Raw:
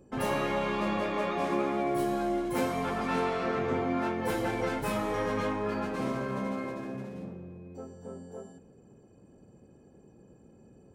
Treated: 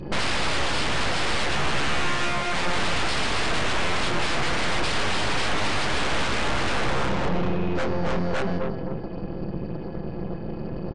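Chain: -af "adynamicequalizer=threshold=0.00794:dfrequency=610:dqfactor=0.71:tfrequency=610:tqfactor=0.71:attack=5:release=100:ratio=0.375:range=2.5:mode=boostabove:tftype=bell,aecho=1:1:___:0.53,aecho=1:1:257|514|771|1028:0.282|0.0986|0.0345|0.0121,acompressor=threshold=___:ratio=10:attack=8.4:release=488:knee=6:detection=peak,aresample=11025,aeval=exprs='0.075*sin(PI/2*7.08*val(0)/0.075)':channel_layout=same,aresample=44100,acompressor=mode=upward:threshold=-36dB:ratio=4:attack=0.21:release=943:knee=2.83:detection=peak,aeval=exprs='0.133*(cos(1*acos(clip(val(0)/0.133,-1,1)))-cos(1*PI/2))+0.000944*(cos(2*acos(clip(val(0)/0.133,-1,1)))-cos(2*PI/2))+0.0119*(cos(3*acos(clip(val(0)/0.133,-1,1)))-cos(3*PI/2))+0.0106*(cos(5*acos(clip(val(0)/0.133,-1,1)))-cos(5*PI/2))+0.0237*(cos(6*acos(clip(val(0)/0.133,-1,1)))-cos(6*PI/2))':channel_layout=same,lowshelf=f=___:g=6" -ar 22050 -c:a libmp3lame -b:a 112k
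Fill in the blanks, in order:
5.9, -30dB, 110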